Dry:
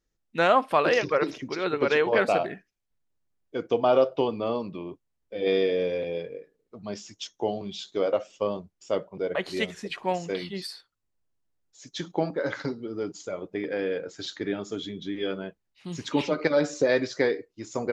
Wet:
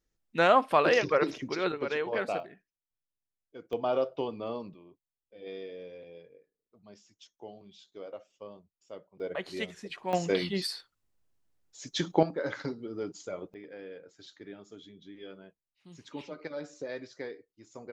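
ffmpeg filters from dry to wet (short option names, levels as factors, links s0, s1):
-af "asetnsamples=n=441:p=0,asendcmd='1.72 volume volume -9dB;2.4 volume volume -15.5dB;3.73 volume volume -8dB;4.74 volume volume -18dB;9.2 volume volume -7dB;10.13 volume volume 3dB;12.23 volume volume -4.5dB;13.54 volume volume -16dB',volume=0.841"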